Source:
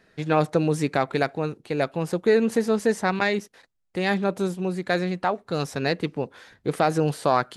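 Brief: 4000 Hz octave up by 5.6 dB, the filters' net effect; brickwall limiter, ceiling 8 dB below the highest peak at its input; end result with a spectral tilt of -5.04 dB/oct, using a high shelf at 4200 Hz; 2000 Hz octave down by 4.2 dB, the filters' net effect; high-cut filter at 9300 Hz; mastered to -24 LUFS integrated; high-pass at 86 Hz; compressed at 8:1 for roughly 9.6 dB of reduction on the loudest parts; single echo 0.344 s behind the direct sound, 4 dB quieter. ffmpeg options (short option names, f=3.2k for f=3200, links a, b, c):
-af "highpass=86,lowpass=9.3k,equalizer=f=2k:t=o:g=-8,equalizer=f=4k:t=o:g=4,highshelf=f=4.2k:g=8,acompressor=threshold=-24dB:ratio=8,alimiter=limit=-18.5dB:level=0:latency=1,aecho=1:1:344:0.631,volume=6.5dB"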